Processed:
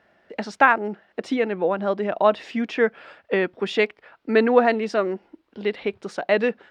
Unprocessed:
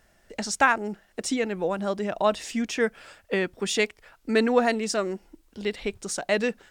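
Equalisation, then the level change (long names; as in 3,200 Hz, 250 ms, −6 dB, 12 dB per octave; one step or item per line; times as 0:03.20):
high-pass filter 130 Hz 12 dB per octave
high-frequency loss of the air 370 metres
bass and treble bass −6 dB, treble +3 dB
+6.5 dB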